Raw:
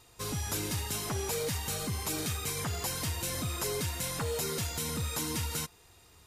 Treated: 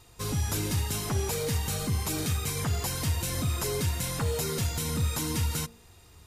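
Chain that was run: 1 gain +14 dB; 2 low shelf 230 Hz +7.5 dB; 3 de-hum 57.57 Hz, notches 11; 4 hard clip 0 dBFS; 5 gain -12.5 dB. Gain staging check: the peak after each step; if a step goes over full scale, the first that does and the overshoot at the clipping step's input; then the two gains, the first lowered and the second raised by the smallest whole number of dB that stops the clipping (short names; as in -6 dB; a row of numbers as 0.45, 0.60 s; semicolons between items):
-8.5, -6.5, -6.0, -6.0, -18.5 dBFS; no overload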